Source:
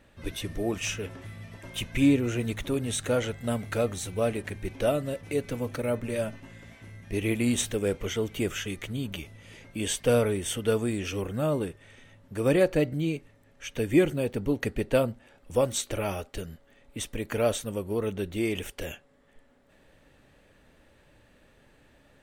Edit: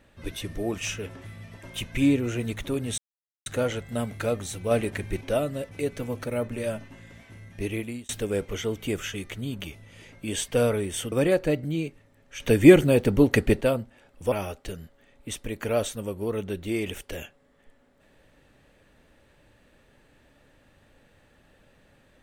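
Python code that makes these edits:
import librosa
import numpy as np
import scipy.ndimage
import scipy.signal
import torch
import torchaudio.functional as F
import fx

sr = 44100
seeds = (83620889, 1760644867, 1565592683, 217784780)

y = fx.edit(x, sr, fx.insert_silence(at_s=2.98, length_s=0.48),
    fx.clip_gain(start_s=4.23, length_s=0.5, db=4.0),
    fx.fade_out_span(start_s=7.13, length_s=0.48),
    fx.cut(start_s=10.64, length_s=1.77),
    fx.clip_gain(start_s=13.69, length_s=1.21, db=8.5),
    fx.cut(start_s=15.61, length_s=0.4), tone=tone)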